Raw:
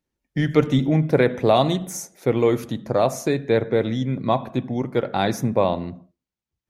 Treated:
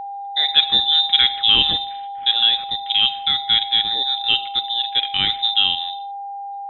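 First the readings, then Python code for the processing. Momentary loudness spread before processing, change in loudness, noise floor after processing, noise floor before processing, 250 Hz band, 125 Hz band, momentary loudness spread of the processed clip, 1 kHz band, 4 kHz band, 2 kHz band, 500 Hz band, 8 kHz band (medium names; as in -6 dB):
8 LU, +5.5 dB, -31 dBFS, under -85 dBFS, -19.0 dB, under -15 dB, 11 LU, +2.5 dB, +23.0 dB, +4.0 dB, -24.0 dB, under -40 dB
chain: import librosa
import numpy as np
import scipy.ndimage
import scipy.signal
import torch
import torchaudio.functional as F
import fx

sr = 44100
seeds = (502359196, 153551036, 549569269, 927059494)

y = x + 10.0 ** (-29.0 / 20.0) * np.sin(2.0 * np.pi * 3000.0 * np.arange(len(x)) / sr)
y = fx.freq_invert(y, sr, carrier_hz=3800)
y = y * librosa.db_to_amplitude(1.5)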